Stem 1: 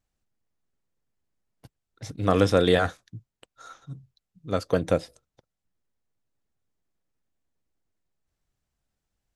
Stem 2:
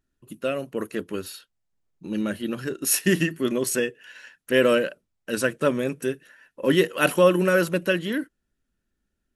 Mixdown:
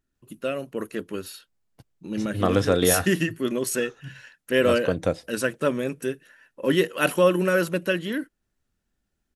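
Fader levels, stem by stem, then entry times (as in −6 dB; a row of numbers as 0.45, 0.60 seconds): −1.0, −1.5 decibels; 0.15, 0.00 seconds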